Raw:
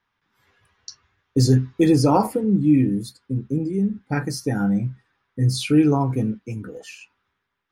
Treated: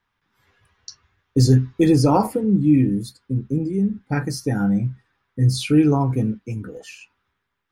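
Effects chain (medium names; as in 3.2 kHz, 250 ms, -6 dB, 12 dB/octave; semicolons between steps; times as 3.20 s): bass shelf 90 Hz +7 dB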